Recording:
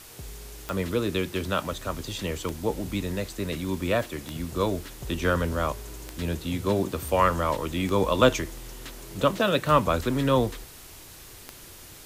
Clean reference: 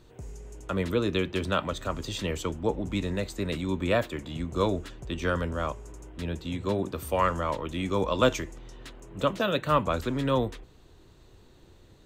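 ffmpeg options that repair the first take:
ffmpeg -i in.wav -af "adeclick=threshold=4,afwtdn=0.005,asetnsamples=nb_out_samples=441:pad=0,asendcmd='5.01 volume volume -3.5dB',volume=0dB" out.wav

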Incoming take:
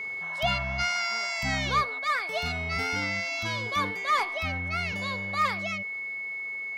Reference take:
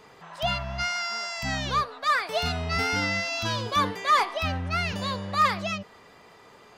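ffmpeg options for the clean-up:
ffmpeg -i in.wav -af "bandreject=frequency=2200:width=30,asetnsamples=nb_out_samples=441:pad=0,asendcmd='1.99 volume volume 4.5dB',volume=0dB" out.wav

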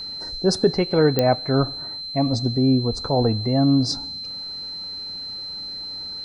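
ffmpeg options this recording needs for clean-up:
ffmpeg -i in.wav -af "adeclick=threshold=4,bandreject=frequency=4100:width=30" out.wav

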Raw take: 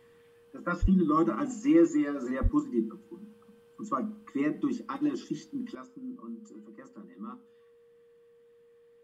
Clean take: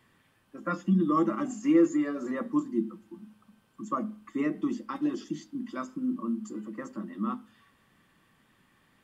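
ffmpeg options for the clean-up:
ffmpeg -i in.wav -filter_complex "[0:a]bandreject=frequency=470:width=30,asplit=3[link_01][link_02][link_03];[link_01]afade=type=out:start_time=0.81:duration=0.02[link_04];[link_02]highpass=frequency=140:width=0.5412,highpass=frequency=140:width=1.3066,afade=type=in:start_time=0.81:duration=0.02,afade=type=out:start_time=0.93:duration=0.02[link_05];[link_03]afade=type=in:start_time=0.93:duration=0.02[link_06];[link_04][link_05][link_06]amix=inputs=3:normalize=0,asplit=3[link_07][link_08][link_09];[link_07]afade=type=out:start_time=2.42:duration=0.02[link_10];[link_08]highpass=frequency=140:width=0.5412,highpass=frequency=140:width=1.3066,afade=type=in:start_time=2.42:duration=0.02,afade=type=out:start_time=2.54:duration=0.02[link_11];[link_09]afade=type=in:start_time=2.54:duration=0.02[link_12];[link_10][link_11][link_12]amix=inputs=3:normalize=0,asetnsamples=nb_out_samples=441:pad=0,asendcmd='5.75 volume volume 10.5dB',volume=0dB" out.wav

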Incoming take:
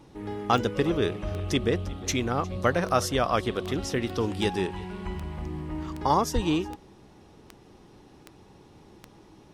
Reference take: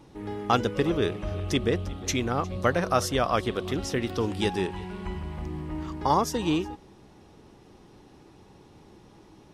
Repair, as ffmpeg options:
ffmpeg -i in.wav -filter_complex "[0:a]adeclick=threshold=4,asplit=3[link_01][link_02][link_03];[link_01]afade=type=out:start_time=6.34:duration=0.02[link_04];[link_02]highpass=frequency=140:width=0.5412,highpass=frequency=140:width=1.3066,afade=type=in:start_time=6.34:duration=0.02,afade=type=out:start_time=6.46:duration=0.02[link_05];[link_03]afade=type=in:start_time=6.46:duration=0.02[link_06];[link_04][link_05][link_06]amix=inputs=3:normalize=0" out.wav

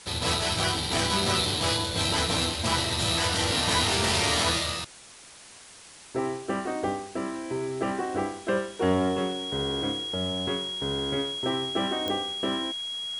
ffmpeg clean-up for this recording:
ffmpeg -i in.wav -af "adeclick=threshold=4,bandreject=frequency=3300:width=30,afwtdn=0.005" out.wav

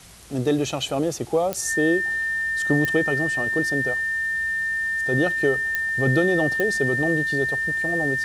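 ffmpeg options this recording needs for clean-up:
ffmpeg -i in.wav -af "adeclick=threshold=4,bandreject=frequency=57.8:width_type=h:width=4,bandreject=frequency=115.6:width_type=h:width=4,bandreject=frequency=173.4:width_type=h:width=4,bandreject=frequency=1800:width=30,afwtdn=0.005" out.wav

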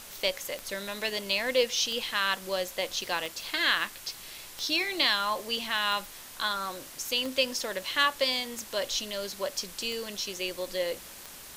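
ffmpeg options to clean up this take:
ffmpeg -i in.wav -af "adeclick=threshold=4,afftdn=noise_reduction=30:noise_floor=-46" out.wav

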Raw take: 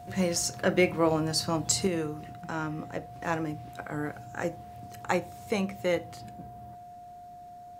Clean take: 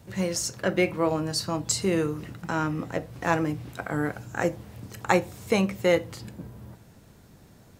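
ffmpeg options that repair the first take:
ffmpeg -i in.wav -af "bandreject=frequency=710:width=30,asetnsamples=nb_out_samples=441:pad=0,asendcmd='1.87 volume volume 6dB',volume=0dB" out.wav

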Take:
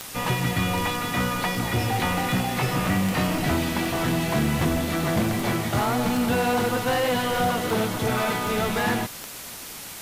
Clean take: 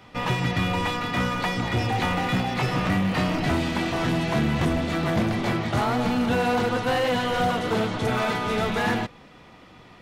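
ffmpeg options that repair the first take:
ffmpeg -i in.wav -af "adeclick=threshold=4,afwtdn=0.014" out.wav

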